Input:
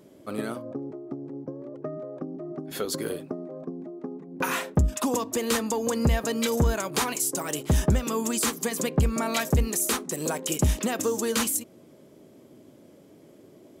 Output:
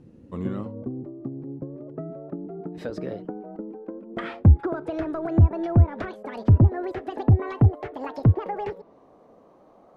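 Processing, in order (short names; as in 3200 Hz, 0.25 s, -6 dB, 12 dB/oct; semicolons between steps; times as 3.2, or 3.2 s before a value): speed glide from 82% -> 195%; treble ducked by the level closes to 940 Hz, closed at -19.5 dBFS; RIAA curve playback; gain -4.5 dB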